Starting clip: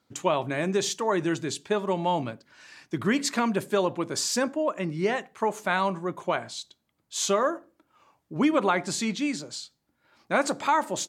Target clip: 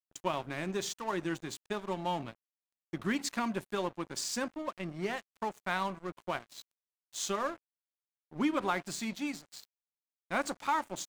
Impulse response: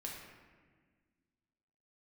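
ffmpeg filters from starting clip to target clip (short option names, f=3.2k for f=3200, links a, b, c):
-af "equalizer=f=460:t=o:w=0.22:g=-9,bandreject=f=610:w=12,aeval=exprs='sgn(val(0))*max(abs(val(0))-0.0126,0)':c=same,volume=-6dB"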